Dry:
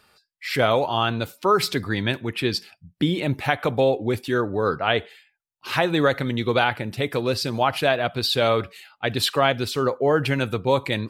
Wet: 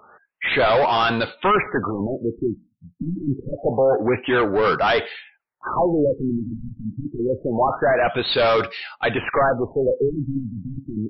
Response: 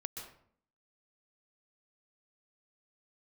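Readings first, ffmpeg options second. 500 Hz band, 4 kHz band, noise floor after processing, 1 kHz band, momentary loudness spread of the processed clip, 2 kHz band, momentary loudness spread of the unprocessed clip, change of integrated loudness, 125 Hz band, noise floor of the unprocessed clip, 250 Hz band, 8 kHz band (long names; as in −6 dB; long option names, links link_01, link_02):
+2.0 dB, −3.0 dB, −65 dBFS, +2.5 dB, 13 LU, +1.0 dB, 6 LU, +1.5 dB, −2.5 dB, −73 dBFS, +1.5 dB, below −25 dB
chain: -filter_complex "[0:a]asplit=2[link_01][link_02];[link_02]highpass=frequency=720:poles=1,volume=27dB,asoftclip=type=tanh:threshold=-4.5dB[link_03];[link_01][link_03]amix=inputs=2:normalize=0,lowpass=frequency=2300:poles=1,volume=-6dB,afftfilt=real='re*lt(b*sr/1024,280*pow(5800/280,0.5+0.5*sin(2*PI*0.26*pts/sr)))':imag='im*lt(b*sr/1024,280*pow(5800/280,0.5+0.5*sin(2*PI*0.26*pts/sr)))':win_size=1024:overlap=0.75,volume=-4.5dB"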